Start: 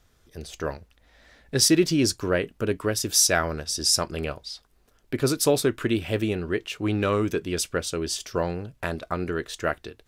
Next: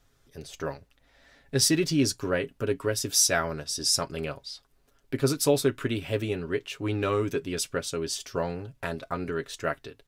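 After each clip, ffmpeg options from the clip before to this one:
-af "aecho=1:1:7.3:0.53,volume=0.631"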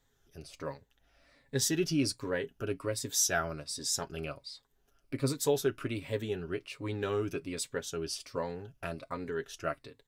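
-af "afftfilt=real='re*pow(10,8/40*sin(2*PI*(1*log(max(b,1)*sr/1024/100)/log(2)-(-1.3)*(pts-256)/sr)))':imag='im*pow(10,8/40*sin(2*PI*(1*log(max(b,1)*sr/1024/100)/log(2)-(-1.3)*(pts-256)/sr)))':win_size=1024:overlap=0.75,volume=0.447"

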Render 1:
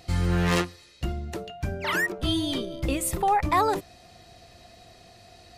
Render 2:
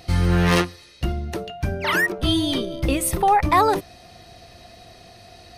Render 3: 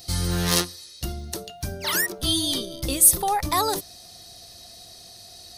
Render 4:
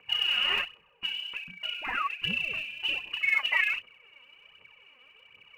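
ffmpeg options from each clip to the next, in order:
-af "bandreject=f=7300:w=5.6,volume=1.88"
-af "aexciter=amount=5.9:drive=5.1:freq=3600,volume=0.447"
-af "lowpass=f=2600:t=q:w=0.5098,lowpass=f=2600:t=q:w=0.6013,lowpass=f=2600:t=q:w=0.9,lowpass=f=2600:t=q:w=2.563,afreqshift=-3000,aphaser=in_gain=1:out_gain=1:delay=4.2:decay=0.64:speed=1.3:type=triangular,volume=0.562"

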